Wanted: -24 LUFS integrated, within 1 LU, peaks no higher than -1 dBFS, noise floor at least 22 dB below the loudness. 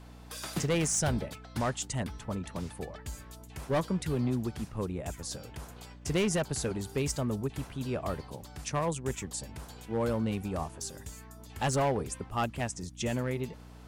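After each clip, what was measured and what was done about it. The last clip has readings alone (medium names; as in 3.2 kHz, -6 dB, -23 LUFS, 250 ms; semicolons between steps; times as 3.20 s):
clipped samples 1.6%; clipping level -23.5 dBFS; hum 60 Hz; highest harmonic 300 Hz; hum level -48 dBFS; loudness -33.5 LUFS; peak level -23.5 dBFS; loudness target -24.0 LUFS
-> clip repair -23.5 dBFS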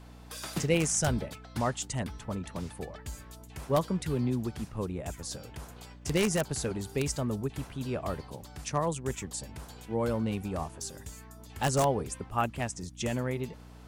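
clipped samples 0.0%; hum 60 Hz; highest harmonic 300 Hz; hum level -47 dBFS
-> de-hum 60 Hz, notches 5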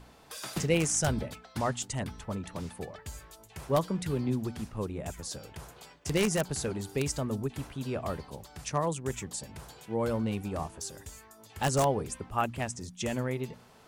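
hum not found; loudness -32.5 LUFS; peak level -14.0 dBFS; loudness target -24.0 LUFS
-> trim +8.5 dB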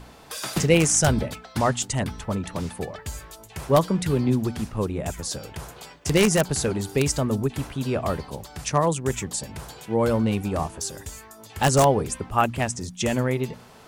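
loudness -24.0 LUFS; peak level -5.5 dBFS; noise floor -48 dBFS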